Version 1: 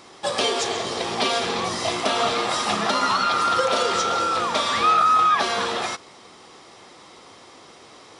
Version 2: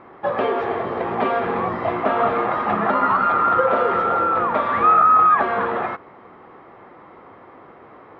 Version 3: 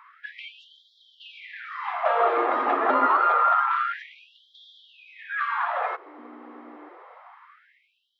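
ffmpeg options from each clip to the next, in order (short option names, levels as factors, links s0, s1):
-af "lowpass=f=1800:w=0.5412,lowpass=f=1800:w=1.3066,volume=1.58"
-af "aeval=exprs='val(0)+0.0316*(sin(2*PI*60*n/s)+sin(2*PI*2*60*n/s)/2+sin(2*PI*3*60*n/s)/3+sin(2*PI*4*60*n/s)/4+sin(2*PI*5*60*n/s)/5)':c=same,afftfilt=real='re*gte(b*sr/1024,220*pow(3200/220,0.5+0.5*sin(2*PI*0.27*pts/sr)))':imag='im*gte(b*sr/1024,220*pow(3200/220,0.5+0.5*sin(2*PI*0.27*pts/sr)))':win_size=1024:overlap=0.75,volume=0.794"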